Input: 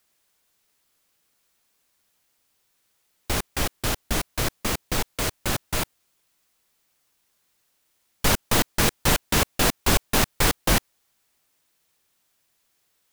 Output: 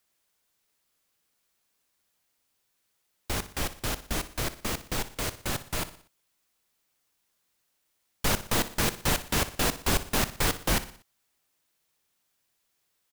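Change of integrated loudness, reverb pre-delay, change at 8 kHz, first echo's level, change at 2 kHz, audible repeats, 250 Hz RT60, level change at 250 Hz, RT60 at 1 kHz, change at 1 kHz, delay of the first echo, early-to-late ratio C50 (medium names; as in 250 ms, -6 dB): -5.5 dB, no reverb, -5.5 dB, -14.5 dB, -5.5 dB, 4, no reverb, -5.5 dB, no reverb, -5.5 dB, 60 ms, no reverb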